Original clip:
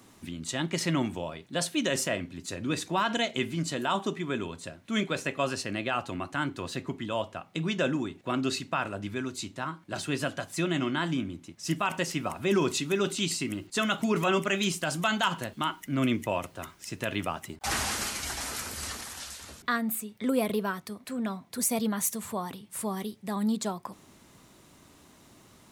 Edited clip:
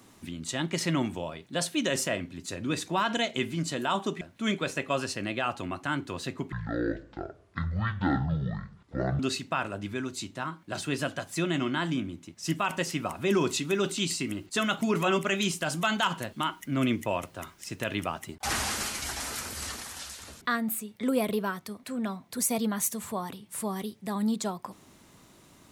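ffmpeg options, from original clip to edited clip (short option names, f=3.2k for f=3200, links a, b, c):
-filter_complex "[0:a]asplit=4[a][b][c][d];[a]atrim=end=4.212[e];[b]atrim=start=4.698:end=7.014[f];[c]atrim=start=7.01:end=8.4,asetpts=PTS-STARTPTS,asetrate=22932,aresample=44100[g];[d]atrim=start=8.396[h];[e][f]acrossfade=d=0.004:c1=hsin:c2=hsin[i];[i][g]acrossfade=d=0.004:c1=hsin:c2=hsin[j];[j][h]acrossfade=d=0.004:c1=hsin:c2=hsin"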